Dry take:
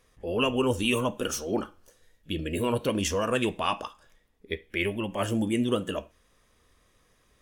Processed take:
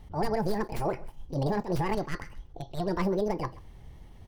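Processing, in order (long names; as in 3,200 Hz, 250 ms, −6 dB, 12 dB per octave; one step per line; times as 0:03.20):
stylus tracing distortion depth 0.31 ms
spectral tilt −2.5 dB per octave
downward compressor 10 to 1, threshold −30 dBFS, peak gain reduction 15.5 dB
low-shelf EQ 240 Hz +5 dB
notch filter 3,800 Hz, Q 28
wrong playback speed 45 rpm record played at 78 rpm
on a send: single-tap delay 132 ms −21 dB
on the sum: level that may rise only so fast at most 210 dB per second
level +3 dB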